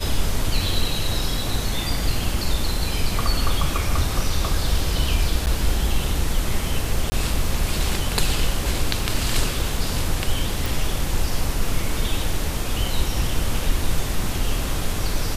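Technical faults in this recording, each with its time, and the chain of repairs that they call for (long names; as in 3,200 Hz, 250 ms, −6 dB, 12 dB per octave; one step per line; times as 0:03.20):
0:05.46–0:05.47: drop-out 9.7 ms
0:07.10–0:07.12: drop-out 20 ms
0:10.66: click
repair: click removal
repair the gap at 0:05.46, 9.7 ms
repair the gap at 0:07.10, 20 ms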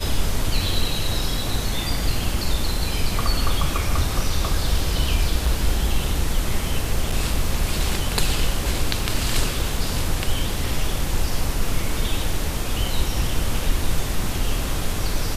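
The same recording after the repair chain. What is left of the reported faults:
none of them is left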